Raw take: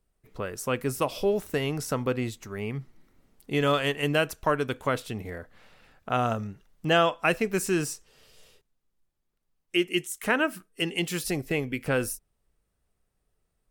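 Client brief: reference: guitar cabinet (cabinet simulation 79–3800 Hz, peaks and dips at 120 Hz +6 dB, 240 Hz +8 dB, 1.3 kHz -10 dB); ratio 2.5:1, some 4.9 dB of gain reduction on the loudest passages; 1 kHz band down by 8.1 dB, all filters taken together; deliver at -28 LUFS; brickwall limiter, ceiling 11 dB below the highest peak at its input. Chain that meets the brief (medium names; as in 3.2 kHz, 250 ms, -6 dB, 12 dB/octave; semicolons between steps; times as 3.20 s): peaking EQ 1 kHz -8 dB; compression 2.5:1, threshold -28 dBFS; peak limiter -27.5 dBFS; cabinet simulation 79–3800 Hz, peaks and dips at 120 Hz +6 dB, 240 Hz +8 dB, 1.3 kHz -10 dB; trim +9 dB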